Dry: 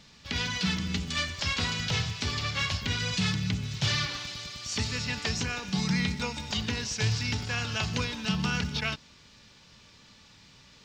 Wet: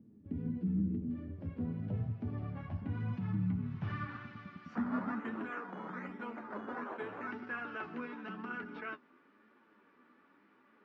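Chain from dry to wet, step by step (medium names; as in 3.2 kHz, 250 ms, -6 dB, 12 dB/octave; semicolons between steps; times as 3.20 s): graphic EQ 125/250/500/1000/4000/8000 Hz -10/+9/-10/-7/-8/-11 dB; peak limiter -27 dBFS, peak gain reduction 8.5 dB; 4.75–7.31 s: decimation with a swept rate 11×, swing 60% 1.2 Hz; high-pass sweep 110 Hz -> 390 Hz, 4.16–5.59 s; flange 0.94 Hz, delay 8.3 ms, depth 4.4 ms, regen +34%; low-pass sweep 400 Hz -> 1.3 kHz, 0.87–4.24 s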